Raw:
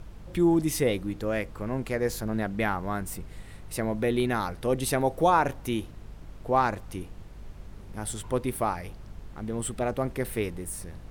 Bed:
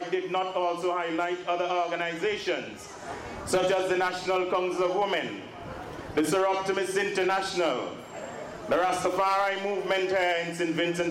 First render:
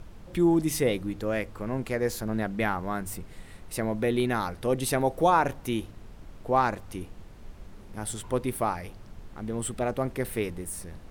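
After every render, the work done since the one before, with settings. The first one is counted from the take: de-hum 50 Hz, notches 3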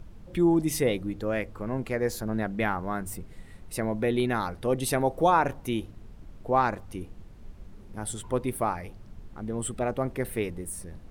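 denoiser 6 dB, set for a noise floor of -47 dBFS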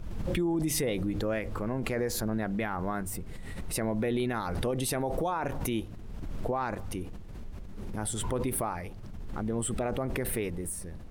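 limiter -22 dBFS, peak gain reduction 12 dB; backwards sustainer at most 26 dB/s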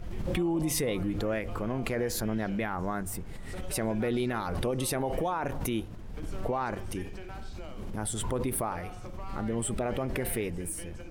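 add bed -20.5 dB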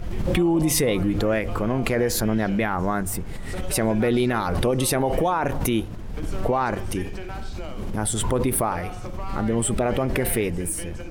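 gain +8.5 dB

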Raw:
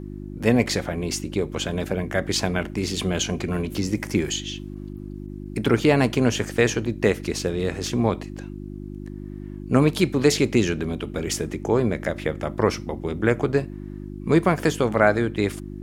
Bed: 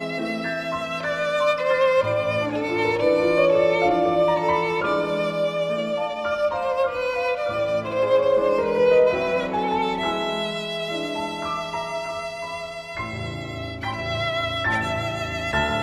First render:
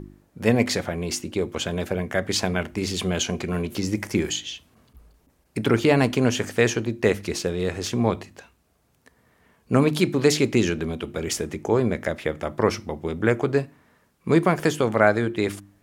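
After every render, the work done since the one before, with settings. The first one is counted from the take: de-hum 50 Hz, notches 7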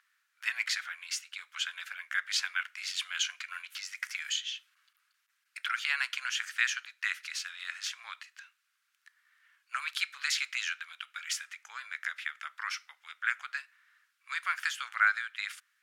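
elliptic high-pass 1400 Hz, stop band 80 dB; high shelf 5300 Hz -10.5 dB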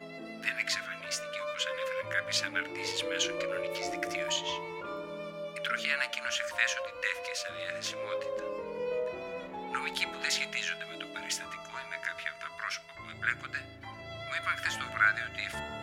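add bed -17 dB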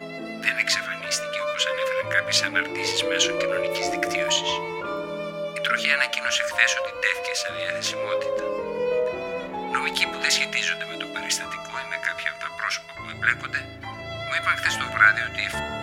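gain +9.5 dB

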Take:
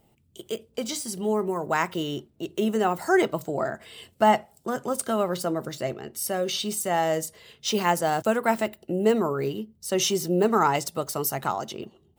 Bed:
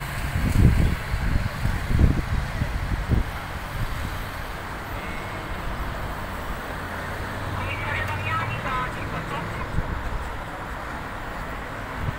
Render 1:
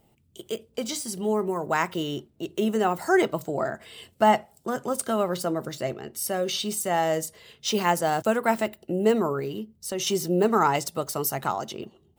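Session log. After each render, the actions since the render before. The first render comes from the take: 9.39–10.07 compressor 2.5:1, threshold -28 dBFS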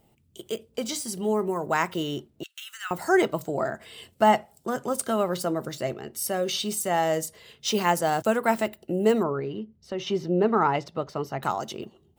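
2.43–2.91 elliptic high-pass 1400 Hz, stop band 70 dB; 9.23–11.43 air absorption 240 m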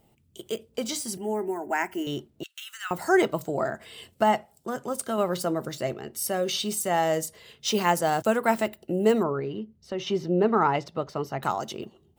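1.17–2.07 fixed phaser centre 770 Hz, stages 8; 4.23–5.18 gain -3 dB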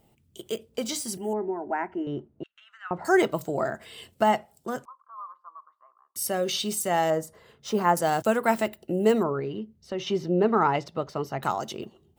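1.33–3.05 LPF 1300 Hz; 4.85–6.16 Butterworth band-pass 1100 Hz, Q 7.1; 7.1–7.97 resonant high shelf 1900 Hz -9.5 dB, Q 1.5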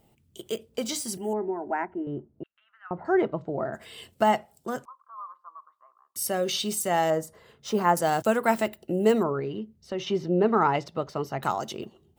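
1.85–3.73 tape spacing loss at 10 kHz 43 dB; 10.05–10.46 high shelf 6000 Hz -6 dB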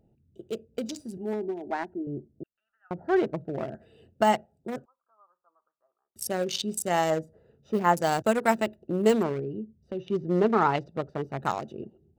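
Wiener smoothing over 41 samples; dynamic EQ 6000 Hz, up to +6 dB, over -48 dBFS, Q 0.72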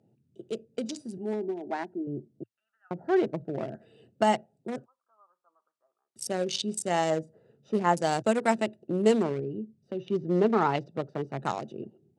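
Chebyshev band-pass 110–9900 Hz, order 4; dynamic EQ 1300 Hz, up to -3 dB, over -42 dBFS, Q 1.4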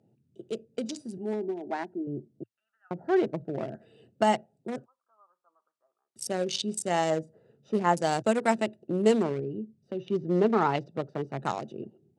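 nothing audible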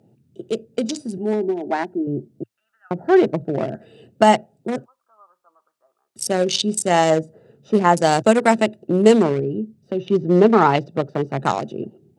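gain +10.5 dB; limiter -1 dBFS, peak gain reduction 2.5 dB

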